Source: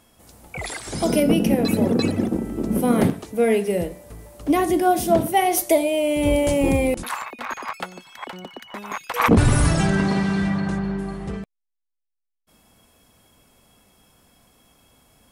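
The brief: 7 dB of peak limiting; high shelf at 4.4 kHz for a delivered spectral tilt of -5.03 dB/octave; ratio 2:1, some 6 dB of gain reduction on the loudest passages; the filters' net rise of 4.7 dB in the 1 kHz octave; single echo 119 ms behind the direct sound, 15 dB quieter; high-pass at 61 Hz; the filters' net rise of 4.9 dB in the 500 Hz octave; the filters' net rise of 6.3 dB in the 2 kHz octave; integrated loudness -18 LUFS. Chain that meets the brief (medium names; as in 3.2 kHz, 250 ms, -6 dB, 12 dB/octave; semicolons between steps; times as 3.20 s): high-pass 61 Hz; peaking EQ 500 Hz +5 dB; peaking EQ 1 kHz +3 dB; peaking EQ 2 kHz +7.5 dB; treble shelf 4.4 kHz -4 dB; compression 2:1, threshold -19 dBFS; peak limiter -13 dBFS; delay 119 ms -15 dB; trim +5.5 dB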